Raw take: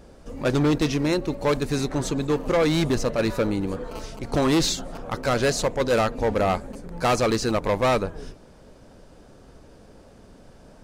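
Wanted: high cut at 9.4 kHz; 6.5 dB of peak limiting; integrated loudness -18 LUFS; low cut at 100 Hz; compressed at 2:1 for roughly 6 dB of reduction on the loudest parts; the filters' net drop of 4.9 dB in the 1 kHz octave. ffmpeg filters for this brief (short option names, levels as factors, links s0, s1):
-af "highpass=100,lowpass=9400,equalizer=f=1000:t=o:g=-7,acompressor=threshold=0.0316:ratio=2,volume=6.31,alimiter=limit=0.376:level=0:latency=1"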